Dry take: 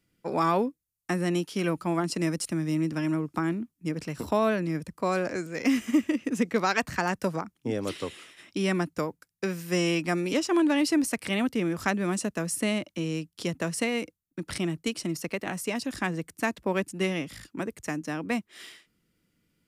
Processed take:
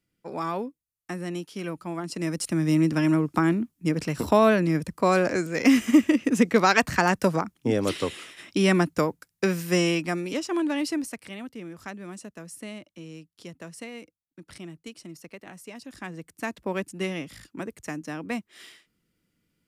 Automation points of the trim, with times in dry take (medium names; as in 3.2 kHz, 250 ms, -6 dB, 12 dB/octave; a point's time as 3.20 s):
2.01 s -5.5 dB
2.68 s +6 dB
9.59 s +6 dB
10.29 s -3 dB
10.89 s -3 dB
11.36 s -11.5 dB
15.75 s -11.5 dB
16.62 s -2 dB